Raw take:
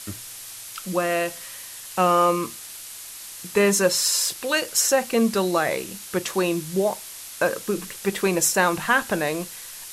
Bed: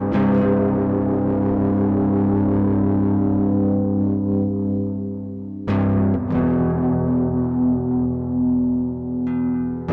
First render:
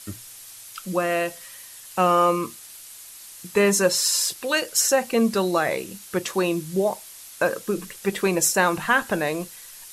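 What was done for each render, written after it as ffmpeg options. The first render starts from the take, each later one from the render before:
-af "afftdn=nr=6:nf=-39"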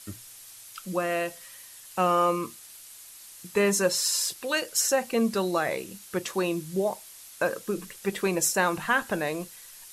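-af "volume=0.596"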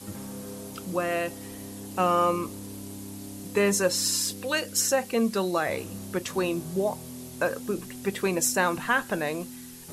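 -filter_complex "[1:a]volume=0.075[s0];[0:a][s0]amix=inputs=2:normalize=0"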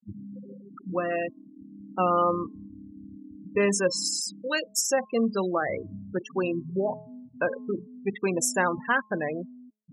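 -af "afftfilt=real='re*gte(hypot(re,im),0.0631)':imag='im*gte(hypot(re,im),0.0631)':win_size=1024:overlap=0.75,bandreject=f=213:t=h:w=4,bandreject=f=426:t=h:w=4,bandreject=f=639:t=h:w=4,bandreject=f=852:t=h:w=4,bandreject=f=1065:t=h:w=4"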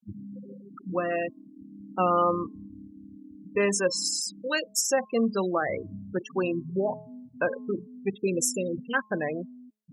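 -filter_complex "[0:a]asettb=1/sr,asplit=3[s0][s1][s2];[s0]atrim=end=2.874[s3];[s1]atrim=start=2.87:end=4.37,asetpts=PTS-STARTPTS,afade=t=in:d=0.004:c=qsin,afade=t=out:st=1.496:d=0.004:c=qsin,lowshelf=f=180:g=-6.5[s4];[s2]atrim=start=4.366[s5];[s3][s4]acrossfade=d=0.004:c1=hsin:c2=qsin[s6];[s6][s5]acrossfade=d=0.004:c1=qsin:c2=hsin,asplit=3[s7][s8][s9];[s7]afade=t=out:st=8.11:d=0.02[s10];[s8]asuperstop=centerf=1200:order=20:qfactor=0.61,afade=t=in:st=8.11:d=0.02,afade=t=out:st=8.93:d=0.02[s11];[s9]afade=t=in:st=8.93:d=0.02[s12];[s10][s11][s12]amix=inputs=3:normalize=0"

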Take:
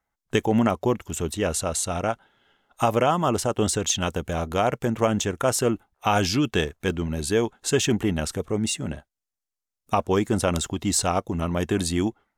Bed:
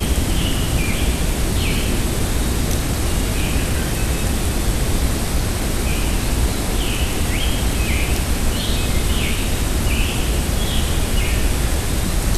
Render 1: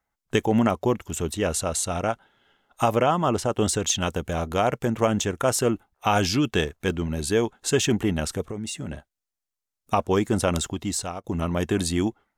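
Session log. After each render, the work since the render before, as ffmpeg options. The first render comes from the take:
-filter_complex "[0:a]asettb=1/sr,asplit=3[s0][s1][s2];[s0]atrim=end=2.964[s3];[s1]atrim=start=2.96:end=3.52,asetpts=PTS-STARTPTS,afade=t=in:d=0.004:c=qsin,afade=t=out:st=0.556:d=0.004:c=qsin,highshelf=f=7400:g=-9[s4];[s2]atrim=start=3.516[s5];[s3][s4]acrossfade=d=0.004:c1=hsin:c2=qsin[s6];[s6][s5]acrossfade=d=0.004:c1=qsin:c2=hsin,asettb=1/sr,asplit=3[s7][s8][s9];[s7]atrim=end=8.424[s10];[s8]atrim=start=8.42:end=8.92,asetpts=PTS-STARTPTS,afade=t=in:d=0.004:c=qsin,afade=t=out:st=0.496:d=0.004:c=qsin,acompressor=threshold=0.0398:ratio=6:attack=3.2:release=140:knee=1:detection=peak[s11];[s9]atrim=start=8.916[s12];[s10][s11]acrossfade=d=0.004:c1=hsin:c2=qsin[s13];[s13][s12]acrossfade=d=0.004:c1=qsin:c2=hsin,asplit=2[s14][s15];[s14]atrim=end=11.24,asetpts=PTS-STARTPTS,afade=t=out:st=10.62:d=0.62:silence=0.177828[s16];[s15]atrim=start=11.24,asetpts=PTS-STARTPTS,afade=t=in:d=0.004:c=hsin:silence=0.177828[s17];[s16][s17]concat=n=2:v=0:a=1"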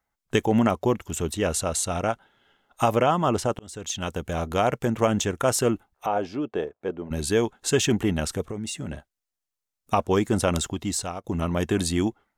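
-filter_complex "[0:a]asettb=1/sr,asplit=3[s0][s1][s2];[s0]atrim=end=6.064[s3];[s1]atrim=start=6.06:end=7.11,asetpts=PTS-STARTPTS,afade=t=in:d=0.004:c=qsin,afade=t=out:st=1.046:d=0.004:c=qsin,bandpass=f=540:t=q:w=1.3[s4];[s2]atrim=start=7.106[s5];[s3][s4]acrossfade=d=0.004:c1=hsin:c2=qsin[s6];[s6][s5]acrossfade=d=0.004:c1=qsin:c2=hsin,asplit=2[s7][s8];[s7]atrim=end=3.59,asetpts=PTS-STARTPTS,afade=t=out:st=3.586:d=0.004:c=hsin[s9];[s8]atrim=start=3.59,asetpts=PTS-STARTPTS,afade=t=in:d=1.09:c=qsin[s10];[s9][s10]concat=n=2:v=0:a=1"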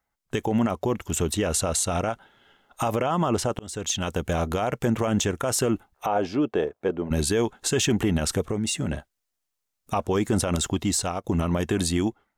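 -af "dynaudnorm=f=140:g=13:m=2.11,alimiter=limit=0.2:level=0:latency=1:release=73"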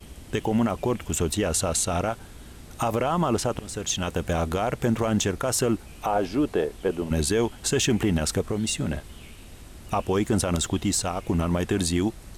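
-filter_complex "[1:a]volume=0.0562[s0];[0:a][s0]amix=inputs=2:normalize=0"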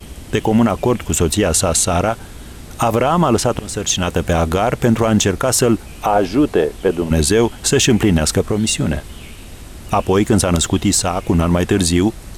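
-af "volume=2.99"

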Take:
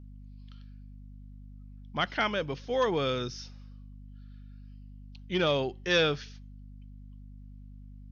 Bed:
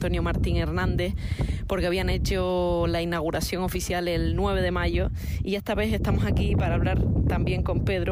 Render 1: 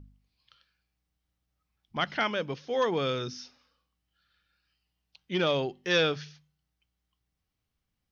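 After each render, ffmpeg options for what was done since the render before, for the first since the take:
-af "bandreject=f=50:t=h:w=4,bandreject=f=100:t=h:w=4,bandreject=f=150:t=h:w=4,bandreject=f=200:t=h:w=4,bandreject=f=250:t=h:w=4"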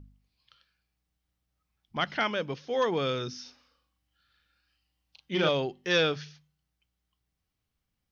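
-filter_complex "[0:a]asettb=1/sr,asplit=3[s0][s1][s2];[s0]atrim=end=3.424[s3];[s1]atrim=start=3.42:end=5.49,asetpts=PTS-STARTPTS,afade=t=in:d=0.004:c=qsin,afade=t=out:st=2.066:d=0.004:c=qsin,asplit=2[s4][s5];[s5]adelay=37,volume=0.708[s6];[s4][s6]amix=inputs=2:normalize=0,atrim=end_sample=91287[s7];[s2]atrim=start=5.486[s8];[s3][s7]acrossfade=d=0.004:c1=hsin:c2=qsin[s9];[s9][s8]acrossfade=d=0.004:c1=qsin:c2=hsin"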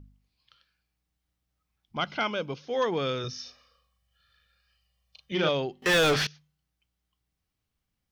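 -filter_complex "[0:a]asettb=1/sr,asplit=3[s0][s1][s2];[s0]atrim=end=1.964[s3];[s1]atrim=start=1.96:end=2.63,asetpts=PTS-STARTPTS,afade=t=in:d=0.004:c=qsin,afade=t=out:st=0.666:d=0.004:c=qsin,asuperstop=centerf=1800:order=4:qfactor=4.8[s4];[s2]atrim=start=2.626[s5];[s3][s4]acrossfade=d=0.004:c1=hsin:c2=qsin[s6];[s6][s5]acrossfade=d=0.004:c1=qsin:c2=hsin,asettb=1/sr,asplit=3[s7][s8][s9];[s7]atrim=end=3.244[s10];[s8]atrim=start=3.24:end=5.32,asetpts=PTS-STARTPTS,afade=t=in:d=0.004:c=qsin,afade=t=out:st=2.076:d=0.004:c=qsin,aecho=1:1:1.7:0.95,atrim=end_sample=91728[s11];[s9]atrim=start=5.316[s12];[s10][s11]acrossfade=d=0.004:c1=hsin:c2=qsin[s13];[s13][s12]acrossfade=d=0.004:c1=qsin:c2=hsin,asettb=1/sr,asplit=3[s14][s15][s16];[s14]atrim=end=5.824[s17];[s15]atrim=start=5.82:end=6.27,asetpts=PTS-STARTPTS,afade=t=in:d=0.004:c=qsin,afade=t=out:st=0.446:d=0.004:c=qsin,asplit=2[s18][s19];[s19]highpass=f=720:p=1,volume=50.1,asoftclip=type=tanh:threshold=0.158[s20];[s18][s20]amix=inputs=2:normalize=0,lowpass=f=3400:p=1,volume=0.501[s21];[s16]atrim=start=6.266[s22];[s17][s21]acrossfade=d=0.004:c1=hsin:c2=qsin[s23];[s23][s22]acrossfade=d=0.004:c1=qsin:c2=hsin"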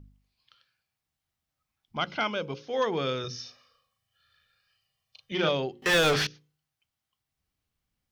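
-af "bandreject=f=60:t=h:w=6,bandreject=f=120:t=h:w=6,bandreject=f=180:t=h:w=6,bandreject=f=240:t=h:w=6,bandreject=f=300:t=h:w=6,bandreject=f=360:t=h:w=6,bandreject=f=420:t=h:w=6,bandreject=f=480:t=h:w=6,bandreject=f=540:t=h:w=6"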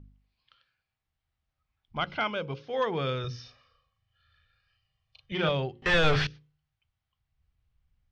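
-af "lowpass=3500,asubboost=boost=7:cutoff=100"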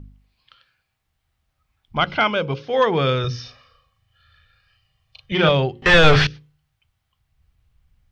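-af "volume=3.55"

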